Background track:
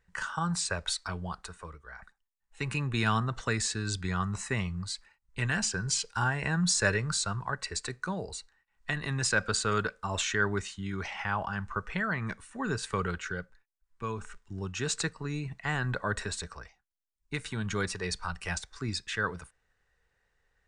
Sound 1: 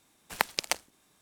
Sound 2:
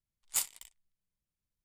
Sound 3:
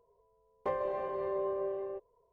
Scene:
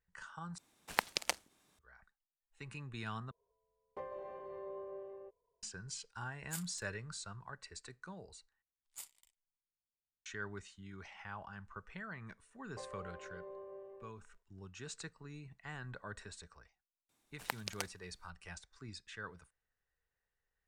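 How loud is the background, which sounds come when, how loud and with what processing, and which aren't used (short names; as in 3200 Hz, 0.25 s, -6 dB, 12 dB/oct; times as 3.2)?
background track -15.5 dB
0.58 replace with 1 -5 dB + high shelf 12000 Hz -6.5 dB
3.31 replace with 3 -12 dB
6.17 add 2 -13 dB
8.62 replace with 2 -18 dB
12.11 add 3 -15.5 dB
17.09 add 1 -12 dB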